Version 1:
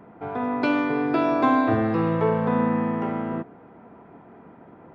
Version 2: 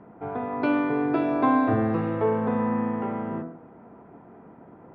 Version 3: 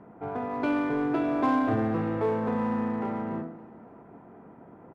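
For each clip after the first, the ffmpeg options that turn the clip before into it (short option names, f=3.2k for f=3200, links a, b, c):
-af "lowpass=4k,highshelf=f=2.3k:g=-9.5,bandreject=f=82.59:t=h:w=4,bandreject=f=165.18:t=h:w=4,bandreject=f=247.77:t=h:w=4,bandreject=f=330.36:t=h:w=4,bandreject=f=412.95:t=h:w=4,bandreject=f=495.54:t=h:w=4,bandreject=f=578.13:t=h:w=4,bandreject=f=660.72:t=h:w=4,bandreject=f=743.31:t=h:w=4,bandreject=f=825.9:t=h:w=4,bandreject=f=908.49:t=h:w=4,bandreject=f=991.08:t=h:w=4,bandreject=f=1.07367k:t=h:w=4,bandreject=f=1.15626k:t=h:w=4,bandreject=f=1.23885k:t=h:w=4,bandreject=f=1.32144k:t=h:w=4,bandreject=f=1.40403k:t=h:w=4,bandreject=f=1.48662k:t=h:w=4,bandreject=f=1.56921k:t=h:w=4,bandreject=f=1.6518k:t=h:w=4,bandreject=f=1.73439k:t=h:w=4,bandreject=f=1.81698k:t=h:w=4,bandreject=f=1.89957k:t=h:w=4,bandreject=f=1.98216k:t=h:w=4,bandreject=f=2.06475k:t=h:w=4,bandreject=f=2.14734k:t=h:w=4,bandreject=f=2.22993k:t=h:w=4,bandreject=f=2.31252k:t=h:w=4,bandreject=f=2.39511k:t=h:w=4,bandreject=f=2.4777k:t=h:w=4"
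-filter_complex "[0:a]asplit=2[a][b];[b]volume=27dB,asoftclip=hard,volume=-27dB,volume=-4.5dB[c];[a][c]amix=inputs=2:normalize=0,aecho=1:1:283|566|849|1132:0.0944|0.0481|0.0246|0.0125,aresample=32000,aresample=44100,volume=-5.5dB"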